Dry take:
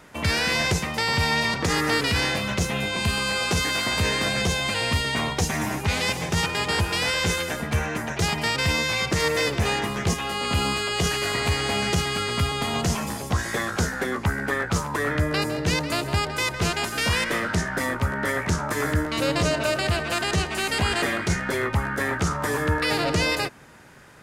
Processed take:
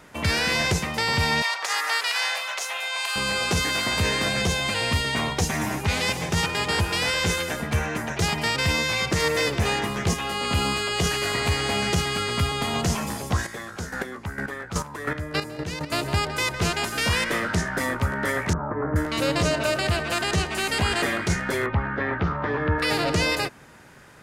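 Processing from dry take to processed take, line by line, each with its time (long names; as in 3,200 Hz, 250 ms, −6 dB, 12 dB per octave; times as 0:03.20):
0:01.42–0:03.16: high-pass filter 700 Hz 24 dB per octave
0:13.38–0:15.91: square-wave tremolo 1.5 Hz → 5.1 Hz, depth 65%, duty 20%
0:18.53–0:18.96: inverse Chebyshev low-pass filter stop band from 5,400 Hz, stop band 70 dB
0:21.66–0:22.79: Bessel low-pass filter 2,400 Hz, order 6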